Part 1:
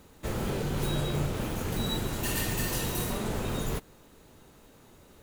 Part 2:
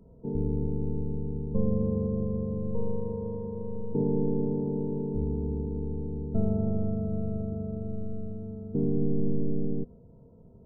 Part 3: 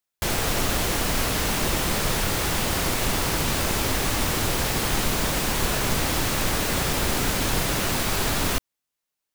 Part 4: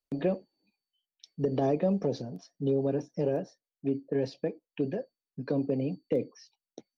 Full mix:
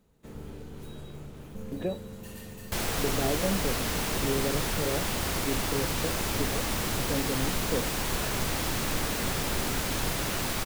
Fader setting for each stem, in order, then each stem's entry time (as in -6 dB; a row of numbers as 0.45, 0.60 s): -16.0, -14.5, -6.0, -3.5 dB; 0.00, 0.00, 2.50, 1.60 s